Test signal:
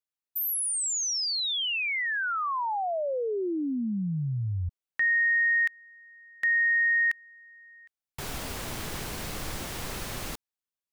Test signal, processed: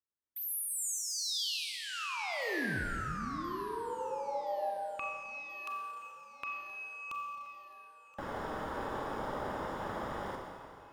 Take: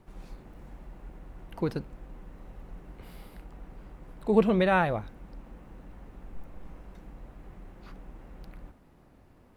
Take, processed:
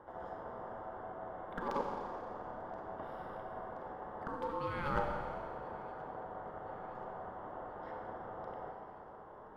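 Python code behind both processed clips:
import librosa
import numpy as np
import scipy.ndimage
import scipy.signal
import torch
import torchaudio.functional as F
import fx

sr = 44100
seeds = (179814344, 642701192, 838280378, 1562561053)

p1 = fx.wiener(x, sr, points=25)
p2 = fx.highpass(p1, sr, hz=130.0, slope=6)
p3 = fx.dynamic_eq(p2, sr, hz=1700.0, q=0.84, threshold_db=-39.0, ratio=4.0, max_db=-6)
p4 = fx.over_compress(p3, sr, threshold_db=-36.0, ratio=-1.0)
p5 = p4 * np.sin(2.0 * np.pi * 700.0 * np.arange(len(p4)) / sr)
p6 = p5 + fx.echo_thinned(p5, sr, ms=1026, feedback_pct=64, hz=180.0, wet_db=-21.0, dry=0)
p7 = fx.rev_schroeder(p6, sr, rt60_s=2.2, comb_ms=29, drr_db=1.5)
y = p7 * librosa.db_to_amplitude(1.0)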